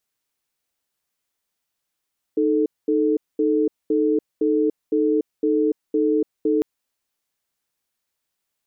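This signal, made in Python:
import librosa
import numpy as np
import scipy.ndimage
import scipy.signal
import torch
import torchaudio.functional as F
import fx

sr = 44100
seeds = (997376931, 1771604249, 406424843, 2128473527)

y = fx.cadence(sr, length_s=4.25, low_hz=309.0, high_hz=438.0, on_s=0.29, off_s=0.22, level_db=-19.0)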